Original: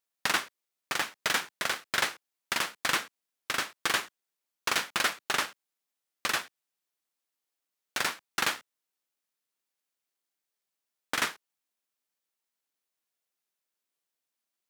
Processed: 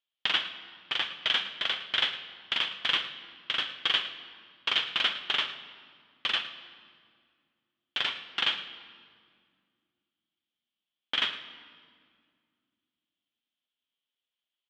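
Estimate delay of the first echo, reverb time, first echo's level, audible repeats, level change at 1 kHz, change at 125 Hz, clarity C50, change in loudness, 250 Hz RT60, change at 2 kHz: 0.11 s, 2.0 s, -16.0 dB, 1, -5.0 dB, n/a, 10.0 dB, +1.5 dB, 3.0 s, -1.5 dB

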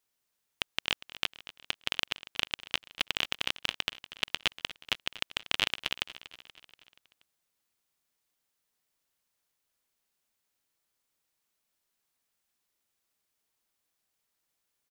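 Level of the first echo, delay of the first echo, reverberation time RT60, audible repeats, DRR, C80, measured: -16.5 dB, 0.239 s, none, 4, none, none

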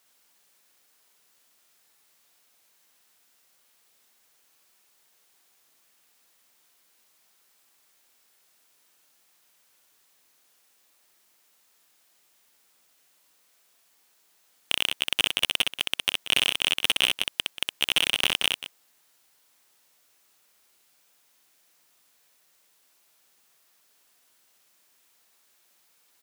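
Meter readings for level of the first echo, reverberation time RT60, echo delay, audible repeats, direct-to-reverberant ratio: -3.5 dB, none, 63 ms, 2, none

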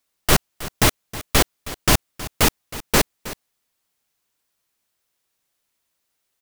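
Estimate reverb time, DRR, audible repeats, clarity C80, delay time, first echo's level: none, none, 1, none, 0.318 s, -16.0 dB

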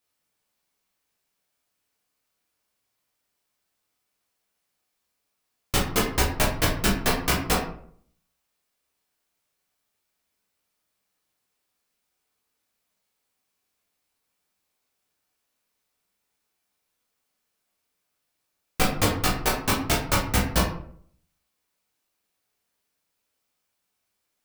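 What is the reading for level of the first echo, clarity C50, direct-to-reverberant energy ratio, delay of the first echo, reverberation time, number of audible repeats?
none, 5.5 dB, -4.0 dB, none, 0.60 s, none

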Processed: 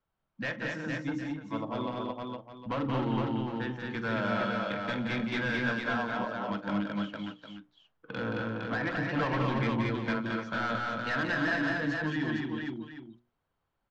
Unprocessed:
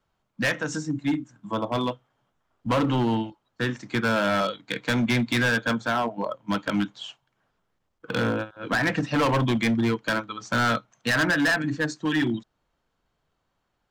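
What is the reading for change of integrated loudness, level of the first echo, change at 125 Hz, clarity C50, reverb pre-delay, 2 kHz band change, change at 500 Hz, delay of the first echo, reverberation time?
-7.0 dB, -18.0 dB, -6.0 dB, none, none, -6.5 dB, -6.5 dB, 45 ms, none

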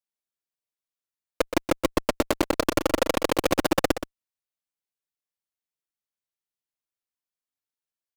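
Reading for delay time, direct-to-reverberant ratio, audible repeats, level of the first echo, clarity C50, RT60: 0.123 s, none, 1, -10.0 dB, none, none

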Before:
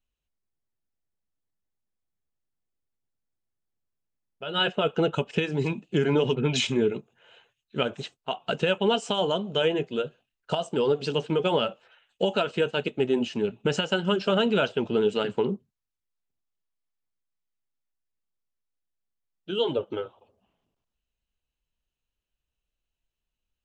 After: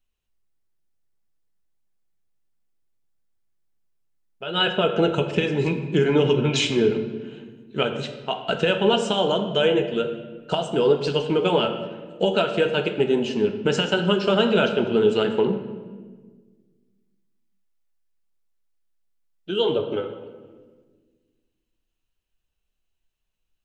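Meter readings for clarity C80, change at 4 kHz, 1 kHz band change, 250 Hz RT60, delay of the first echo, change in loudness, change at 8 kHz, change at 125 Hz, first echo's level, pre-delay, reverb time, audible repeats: 10.0 dB, +4.0 dB, +4.0 dB, 2.1 s, none, +4.5 dB, +3.5 dB, +4.0 dB, none, 3 ms, 1.5 s, none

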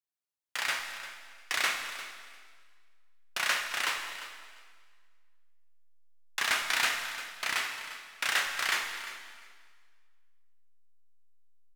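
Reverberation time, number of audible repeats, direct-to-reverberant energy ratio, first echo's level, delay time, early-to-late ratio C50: 1.7 s, 2, 2.5 dB, -14.5 dB, 0.349 s, 4.5 dB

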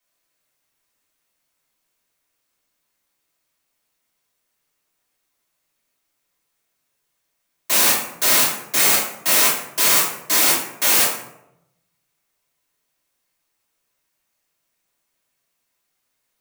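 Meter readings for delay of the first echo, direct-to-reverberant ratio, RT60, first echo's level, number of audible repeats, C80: none, -7.5 dB, 0.85 s, none, none, 7.0 dB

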